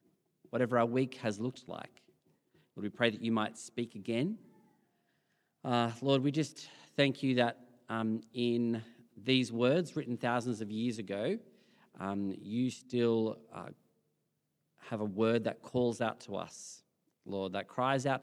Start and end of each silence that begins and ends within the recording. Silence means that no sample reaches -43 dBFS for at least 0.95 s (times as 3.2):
4.35–5.64
13.72–14.87